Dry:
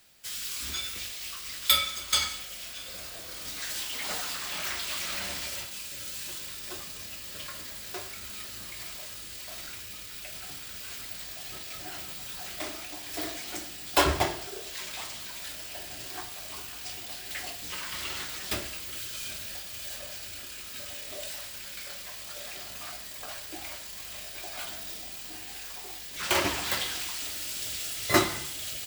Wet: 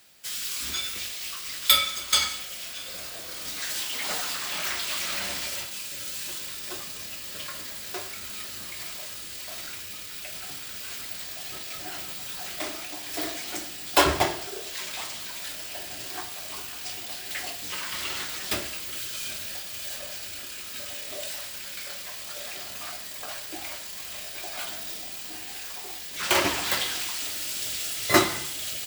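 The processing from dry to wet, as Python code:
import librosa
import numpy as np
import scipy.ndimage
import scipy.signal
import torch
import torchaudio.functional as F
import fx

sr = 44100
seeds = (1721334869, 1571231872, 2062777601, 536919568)

y = fx.low_shelf(x, sr, hz=78.0, db=-10.0)
y = y * librosa.db_to_amplitude(3.5)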